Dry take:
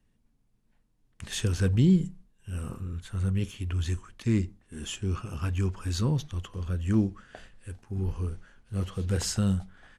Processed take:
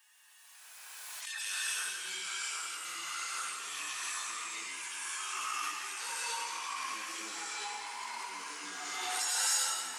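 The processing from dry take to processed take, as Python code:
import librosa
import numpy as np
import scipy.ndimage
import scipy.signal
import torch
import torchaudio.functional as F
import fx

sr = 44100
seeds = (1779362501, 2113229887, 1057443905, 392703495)

p1 = fx.hpss_only(x, sr, part='harmonic')
p2 = scipy.signal.sosfilt(scipy.signal.butter(4, 980.0, 'highpass', fs=sr, output='sos'), p1)
p3 = fx.high_shelf(p2, sr, hz=5400.0, db=8.5)
p4 = fx.rider(p3, sr, range_db=4, speed_s=0.5)
p5 = p3 + (p4 * librosa.db_to_amplitude(0.5))
p6 = p5 * (1.0 - 0.61 / 2.0 + 0.61 / 2.0 * np.cos(2.0 * np.pi * 1.3 * (np.arange(len(p5)) / sr)))
p7 = p6 + fx.echo_feedback(p6, sr, ms=171, feedback_pct=43, wet_db=-7, dry=0)
p8 = fx.rev_gated(p7, sr, seeds[0], gate_ms=330, shape='rising', drr_db=-6.5)
p9 = fx.echo_pitch(p8, sr, ms=548, semitones=-2, count=3, db_per_echo=-3.0)
y = fx.pre_swell(p9, sr, db_per_s=20.0)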